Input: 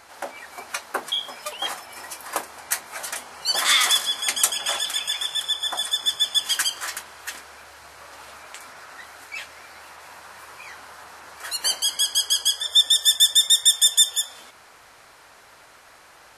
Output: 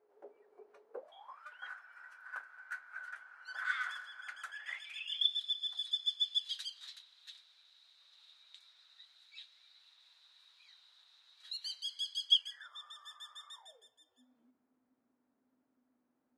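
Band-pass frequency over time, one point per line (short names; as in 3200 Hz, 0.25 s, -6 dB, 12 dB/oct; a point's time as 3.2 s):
band-pass, Q 19
0.9 s 420 Hz
1.48 s 1500 Hz
4.45 s 1500 Hz
5.35 s 3800 Hz
12.28 s 3800 Hz
12.73 s 1200 Hz
13.53 s 1200 Hz
13.95 s 250 Hz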